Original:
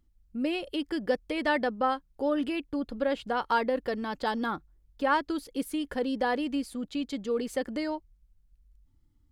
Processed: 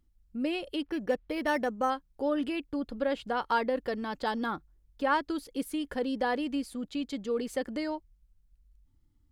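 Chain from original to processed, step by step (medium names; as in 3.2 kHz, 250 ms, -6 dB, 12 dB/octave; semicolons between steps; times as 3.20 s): 0.82–1.90 s: decimation joined by straight lines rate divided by 6×; trim -1.5 dB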